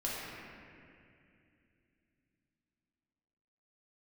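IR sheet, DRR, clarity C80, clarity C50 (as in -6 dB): -7.0 dB, -1.0 dB, -3.0 dB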